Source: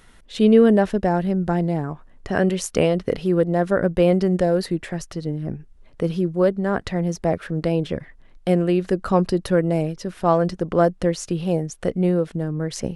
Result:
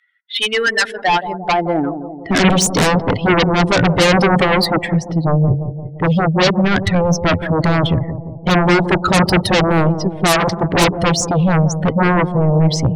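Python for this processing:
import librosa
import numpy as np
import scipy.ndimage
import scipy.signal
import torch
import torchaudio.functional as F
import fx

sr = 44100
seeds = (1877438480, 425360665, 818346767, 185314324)

p1 = fx.bin_expand(x, sr, power=2.0)
p2 = fx.env_lowpass(p1, sr, base_hz=2400.0, full_db=-20.0)
p3 = fx.peak_eq(p2, sr, hz=310.0, db=2.0, octaves=0.29)
p4 = fx.filter_sweep_highpass(p3, sr, from_hz=1800.0, to_hz=110.0, start_s=0.78, end_s=2.92, q=2.5)
p5 = fx.fold_sine(p4, sr, drive_db=20, ceiling_db=-8.0)
p6 = p4 + F.gain(torch.from_numpy(p5), -7.0).numpy()
p7 = fx.echo_bbd(p6, sr, ms=173, stages=1024, feedback_pct=58, wet_db=-9.5)
p8 = fx.doppler_dist(p7, sr, depth_ms=0.88, at=(10.36, 10.86))
y = F.gain(torch.from_numpy(p8), 3.0).numpy()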